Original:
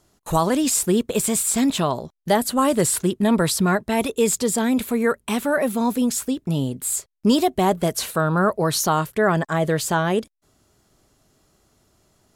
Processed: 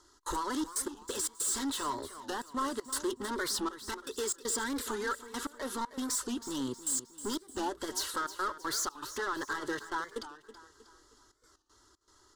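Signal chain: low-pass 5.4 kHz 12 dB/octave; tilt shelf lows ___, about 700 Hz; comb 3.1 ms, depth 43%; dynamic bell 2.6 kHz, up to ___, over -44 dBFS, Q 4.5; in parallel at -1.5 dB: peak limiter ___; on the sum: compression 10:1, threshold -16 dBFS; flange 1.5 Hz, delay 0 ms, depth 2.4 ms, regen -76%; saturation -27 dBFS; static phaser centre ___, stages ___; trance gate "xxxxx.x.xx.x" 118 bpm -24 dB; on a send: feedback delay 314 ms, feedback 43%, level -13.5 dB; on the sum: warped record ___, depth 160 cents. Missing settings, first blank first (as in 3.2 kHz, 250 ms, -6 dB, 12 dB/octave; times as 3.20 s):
-7 dB, +6 dB, -12.5 dBFS, 660 Hz, 6, 45 rpm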